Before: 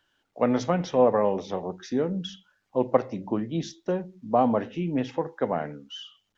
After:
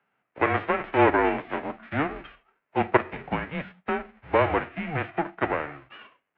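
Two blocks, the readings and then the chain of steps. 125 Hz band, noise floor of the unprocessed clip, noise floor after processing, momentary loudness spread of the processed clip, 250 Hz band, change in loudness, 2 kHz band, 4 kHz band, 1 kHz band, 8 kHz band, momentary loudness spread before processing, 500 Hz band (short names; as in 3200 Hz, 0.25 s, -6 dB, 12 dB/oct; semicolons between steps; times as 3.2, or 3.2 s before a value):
-1.0 dB, -76 dBFS, -79 dBFS, 12 LU, -2.5 dB, +0.5 dB, +14.0 dB, -3.0 dB, +3.0 dB, n/a, 12 LU, -2.0 dB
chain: spectral whitening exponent 0.3; notches 60/120/180/240 Hz; mistuned SSB -150 Hz 320–2500 Hz; gain +2.5 dB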